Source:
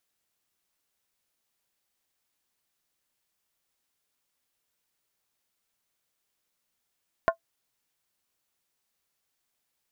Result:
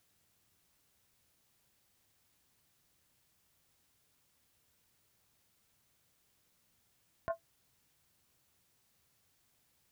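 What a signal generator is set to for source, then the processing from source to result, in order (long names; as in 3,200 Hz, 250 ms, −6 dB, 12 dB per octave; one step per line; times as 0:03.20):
struck skin, lowest mode 666 Hz, decay 0.10 s, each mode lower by 4 dB, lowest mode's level −14.5 dB
compressor whose output falls as the input rises −29 dBFS
brickwall limiter −26.5 dBFS
parametric band 94 Hz +13 dB 2.4 octaves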